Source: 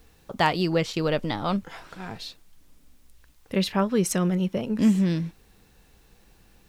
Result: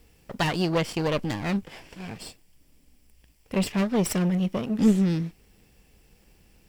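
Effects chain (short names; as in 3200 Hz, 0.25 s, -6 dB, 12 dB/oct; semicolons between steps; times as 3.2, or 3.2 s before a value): minimum comb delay 0.39 ms; added harmonics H 2 -11 dB, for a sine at -10.5 dBFS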